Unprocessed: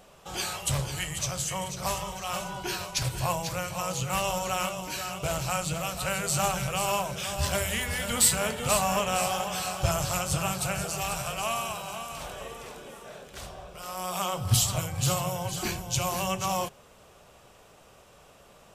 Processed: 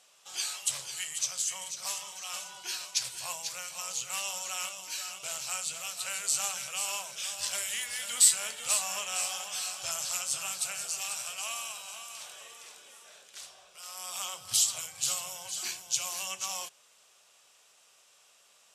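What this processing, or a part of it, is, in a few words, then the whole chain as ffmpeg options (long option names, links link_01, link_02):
piezo pickup straight into a mixer: -af "lowpass=7400,aderivative,volume=4.5dB"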